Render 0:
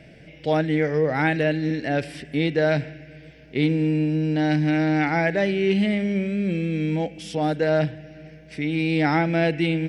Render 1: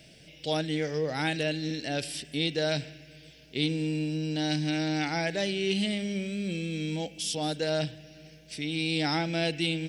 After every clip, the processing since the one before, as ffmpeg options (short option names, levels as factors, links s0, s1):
-af "aexciter=amount=7:drive=3:freq=2900,volume=0.376"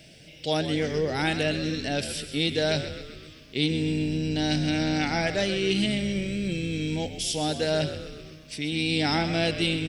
-filter_complex "[0:a]asplit=8[s0][s1][s2][s3][s4][s5][s6][s7];[s1]adelay=129,afreqshift=-62,volume=0.282[s8];[s2]adelay=258,afreqshift=-124,volume=0.164[s9];[s3]adelay=387,afreqshift=-186,volume=0.0944[s10];[s4]adelay=516,afreqshift=-248,volume=0.055[s11];[s5]adelay=645,afreqshift=-310,volume=0.032[s12];[s6]adelay=774,afreqshift=-372,volume=0.0184[s13];[s7]adelay=903,afreqshift=-434,volume=0.0107[s14];[s0][s8][s9][s10][s11][s12][s13][s14]amix=inputs=8:normalize=0,volume=1.41"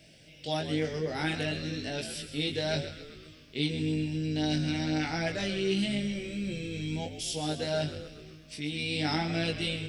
-af "flanger=delay=18.5:depth=2.1:speed=0.96,volume=0.75"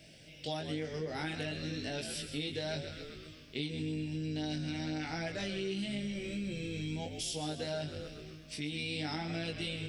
-af "acompressor=threshold=0.0178:ratio=4"